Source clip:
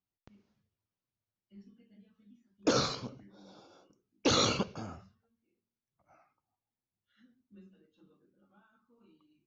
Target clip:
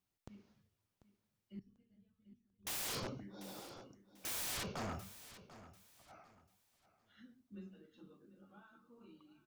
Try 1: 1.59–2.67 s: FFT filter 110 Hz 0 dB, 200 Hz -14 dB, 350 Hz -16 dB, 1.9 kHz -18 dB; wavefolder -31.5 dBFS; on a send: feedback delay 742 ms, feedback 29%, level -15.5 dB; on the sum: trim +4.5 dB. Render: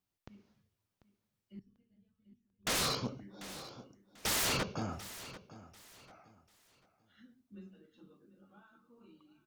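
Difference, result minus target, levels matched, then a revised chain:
wavefolder: distortion -9 dB
1.59–2.67 s: FFT filter 110 Hz 0 dB, 200 Hz -14 dB, 350 Hz -16 dB, 1.9 kHz -18 dB; wavefolder -40.5 dBFS; on a send: feedback delay 742 ms, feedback 29%, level -15.5 dB; on the sum: trim +4.5 dB

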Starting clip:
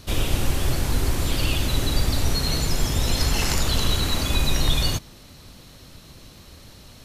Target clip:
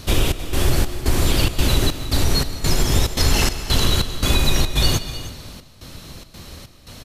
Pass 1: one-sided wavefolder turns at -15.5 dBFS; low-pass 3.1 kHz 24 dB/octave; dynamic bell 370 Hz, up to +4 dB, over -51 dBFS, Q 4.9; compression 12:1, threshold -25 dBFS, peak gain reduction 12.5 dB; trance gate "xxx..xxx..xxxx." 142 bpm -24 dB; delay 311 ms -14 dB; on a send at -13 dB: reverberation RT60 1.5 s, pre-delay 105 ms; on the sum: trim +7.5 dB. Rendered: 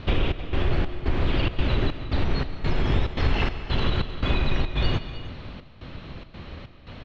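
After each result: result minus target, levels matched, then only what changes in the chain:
one-sided wavefolder: distortion +34 dB; compression: peak gain reduction +6 dB; 4 kHz band -5.0 dB
change: one-sided wavefolder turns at -9 dBFS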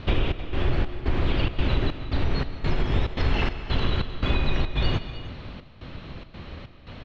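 compression: peak gain reduction +6 dB; 4 kHz band -5.0 dB
change: compression 12:1, threshold -18.5 dBFS, peak gain reduction 6.5 dB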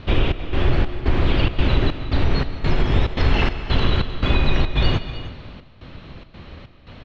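4 kHz band -5.0 dB
remove: low-pass 3.1 kHz 24 dB/octave

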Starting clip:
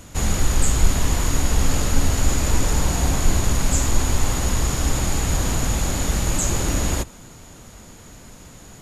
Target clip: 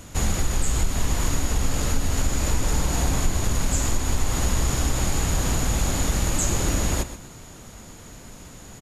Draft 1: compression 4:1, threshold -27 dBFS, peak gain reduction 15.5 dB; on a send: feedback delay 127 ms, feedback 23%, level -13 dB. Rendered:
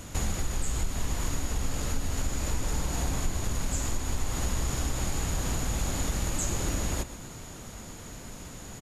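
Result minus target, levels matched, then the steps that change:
compression: peak gain reduction +7 dB
change: compression 4:1, threshold -17.5 dBFS, peak gain reduction 8.5 dB

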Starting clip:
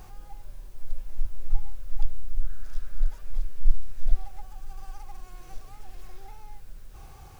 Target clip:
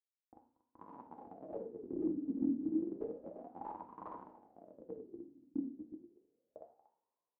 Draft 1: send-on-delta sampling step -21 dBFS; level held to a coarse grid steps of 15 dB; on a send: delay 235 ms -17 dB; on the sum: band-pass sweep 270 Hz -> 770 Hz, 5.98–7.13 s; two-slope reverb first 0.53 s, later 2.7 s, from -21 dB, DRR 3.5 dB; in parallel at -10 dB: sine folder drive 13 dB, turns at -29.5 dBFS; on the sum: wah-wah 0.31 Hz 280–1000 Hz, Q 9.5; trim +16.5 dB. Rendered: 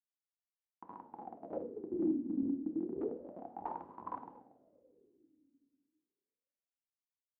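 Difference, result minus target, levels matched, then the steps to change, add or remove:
send-on-delta sampling: distortion +5 dB
change: send-on-delta sampling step -27.5 dBFS

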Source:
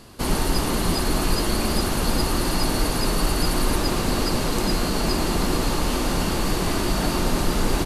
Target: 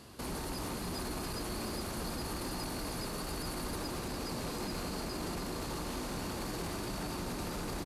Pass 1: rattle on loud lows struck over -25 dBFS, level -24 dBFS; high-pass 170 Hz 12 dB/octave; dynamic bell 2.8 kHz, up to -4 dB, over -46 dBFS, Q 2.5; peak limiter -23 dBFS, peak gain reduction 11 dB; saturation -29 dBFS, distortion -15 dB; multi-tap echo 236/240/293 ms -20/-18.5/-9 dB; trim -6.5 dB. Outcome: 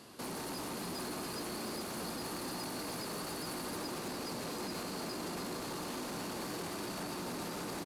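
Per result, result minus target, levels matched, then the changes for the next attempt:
saturation: distortion +9 dB; 125 Hz band -5.0 dB
change: saturation -22.5 dBFS, distortion -24 dB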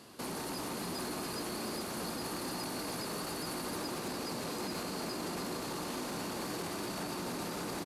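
125 Hz band -5.0 dB
change: high-pass 47 Hz 12 dB/octave

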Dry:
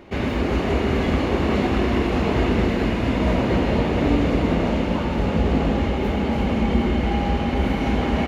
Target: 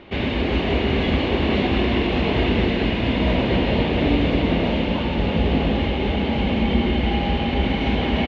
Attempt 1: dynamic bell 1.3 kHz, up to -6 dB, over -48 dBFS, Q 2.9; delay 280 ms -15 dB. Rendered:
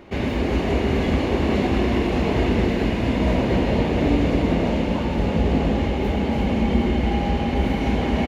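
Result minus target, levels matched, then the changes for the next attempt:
4 kHz band -6.0 dB
add after dynamic bell: resonant low-pass 3.4 kHz, resonance Q 2.4

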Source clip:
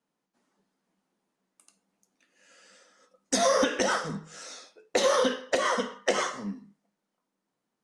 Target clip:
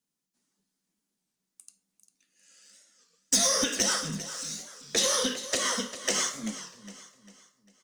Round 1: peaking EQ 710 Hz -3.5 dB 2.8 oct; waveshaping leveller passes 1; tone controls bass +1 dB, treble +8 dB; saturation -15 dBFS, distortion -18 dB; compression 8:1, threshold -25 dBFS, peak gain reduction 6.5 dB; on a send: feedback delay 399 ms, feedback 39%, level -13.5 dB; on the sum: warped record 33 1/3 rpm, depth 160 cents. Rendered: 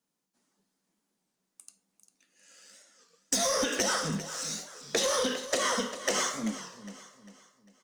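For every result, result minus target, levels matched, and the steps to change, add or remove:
compression: peak gain reduction +6.5 dB; 1 kHz band +5.0 dB
remove: compression 8:1, threshold -25 dBFS, peak gain reduction 6.5 dB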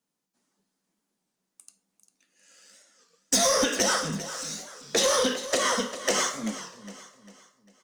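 1 kHz band +5.0 dB
change: peaking EQ 710 Hz -12.5 dB 2.8 oct

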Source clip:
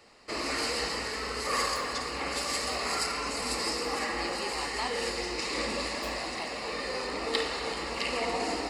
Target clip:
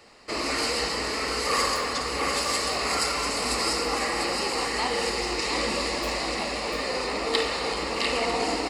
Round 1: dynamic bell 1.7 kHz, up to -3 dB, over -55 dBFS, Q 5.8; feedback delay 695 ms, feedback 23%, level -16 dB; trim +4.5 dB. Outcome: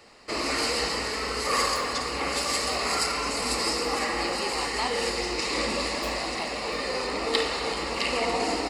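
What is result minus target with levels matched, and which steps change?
echo-to-direct -10 dB
change: feedback delay 695 ms, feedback 23%, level -6 dB

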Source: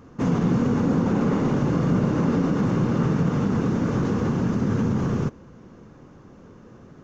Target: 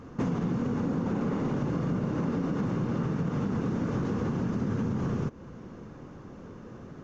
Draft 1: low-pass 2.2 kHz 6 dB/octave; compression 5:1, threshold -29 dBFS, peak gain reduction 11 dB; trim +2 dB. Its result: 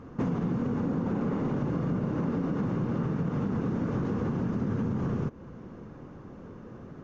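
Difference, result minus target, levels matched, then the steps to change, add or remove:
8 kHz band -7.0 dB
change: low-pass 7.1 kHz 6 dB/octave

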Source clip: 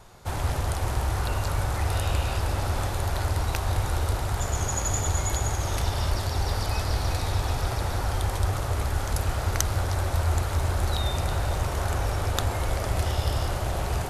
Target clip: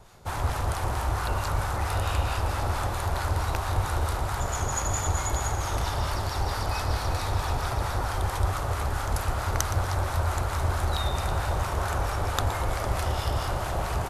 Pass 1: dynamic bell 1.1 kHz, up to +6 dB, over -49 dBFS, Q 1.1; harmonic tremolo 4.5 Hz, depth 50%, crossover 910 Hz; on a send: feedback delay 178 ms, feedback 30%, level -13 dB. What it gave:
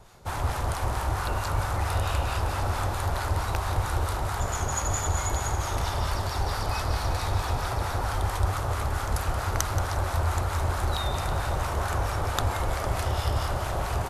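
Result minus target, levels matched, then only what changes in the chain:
echo 60 ms late
change: feedback delay 118 ms, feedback 30%, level -13 dB

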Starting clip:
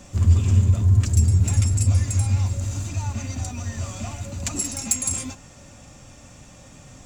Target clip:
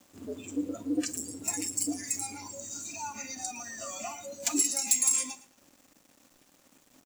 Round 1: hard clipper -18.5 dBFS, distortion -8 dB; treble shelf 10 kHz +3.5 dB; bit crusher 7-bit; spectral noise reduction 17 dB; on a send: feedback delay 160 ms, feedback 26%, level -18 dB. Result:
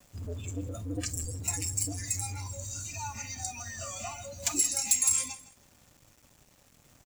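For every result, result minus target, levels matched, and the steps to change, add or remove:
echo 48 ms late; 250 Hz band -7.0 dB
change: feedback delay 112 ms, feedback 26%, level -18 dB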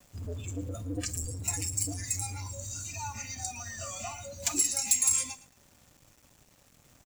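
250 Hz band -7.0 dB
add after hard clipper: resonant high-pass 280 Hz, resonance Q 2.4

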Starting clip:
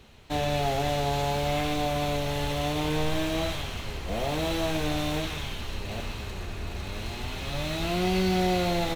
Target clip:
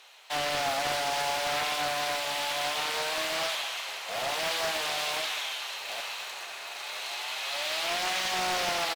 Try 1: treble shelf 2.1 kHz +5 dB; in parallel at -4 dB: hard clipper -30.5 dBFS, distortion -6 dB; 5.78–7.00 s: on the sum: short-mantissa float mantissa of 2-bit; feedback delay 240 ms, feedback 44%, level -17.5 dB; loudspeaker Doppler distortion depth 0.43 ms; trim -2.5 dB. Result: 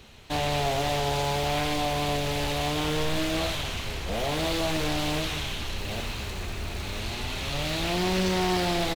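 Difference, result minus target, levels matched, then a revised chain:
500 Hz band +3.5 dB
high-pass 650 Hz 24 dB/octave; treble shelf 2.1 kHz +5 dB; in parallel at -4 dB: hard clipper -30.5 dBFS, distortion -10 dB; 5.78–7.00 s: on the sum: short-mantissa float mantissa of 2-bit; feedback delay 240 ms, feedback 44%, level -17.5 dB; loudspeaker Doppler distortion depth 0.43 ms; trim -2.5 dB

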